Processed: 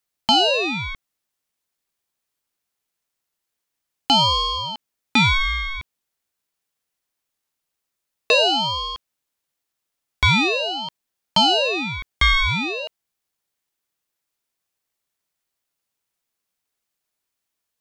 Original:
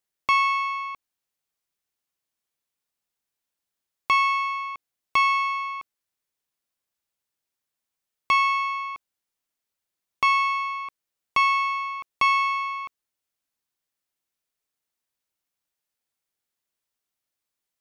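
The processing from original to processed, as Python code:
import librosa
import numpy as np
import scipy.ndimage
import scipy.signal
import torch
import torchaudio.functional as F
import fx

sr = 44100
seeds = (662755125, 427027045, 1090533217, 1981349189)

y = fx.ring_lfo(x, sr, carrier_hz=1600.0, swing_pct=35, hz=0.45)
y = y * 10.0 ** (7.0 / 20.0)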